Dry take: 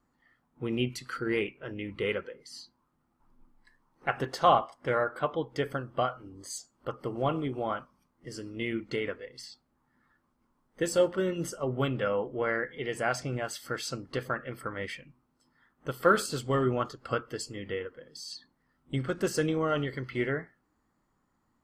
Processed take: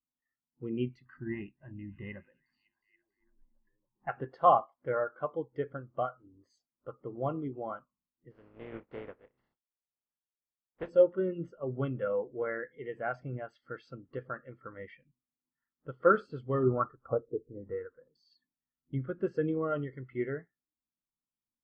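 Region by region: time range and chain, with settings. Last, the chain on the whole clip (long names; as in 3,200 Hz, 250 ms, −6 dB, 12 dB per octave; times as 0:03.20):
0:01.05–0:04.09: head-to-tape spacing loss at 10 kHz 22 dB + comb filter 1.1 ms, depth 98% + echo through a band-pass that steps 279 ms, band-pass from 5,800 Hz, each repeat −0.7 octaves, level −9.5 dB
0:08.30–0:10.88: compressing power law on the bin magnitudes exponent 0.26 + low-pass filter 1,300 Hz 6 dB per octave + dynamic equaliser 480 Hz, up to +5 dB, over −50 dBFS, Q 1.9
0:16.63–0:18.13: low-shelf EQ 86 Hz +7 dB + auto-filter low-pass sine 1 Hz 420–1,600 Hz
whole clip: low-pass filter 2,800 Hz 12 dB per octave; every bin expanded away from the loudest bin 1.5 to 1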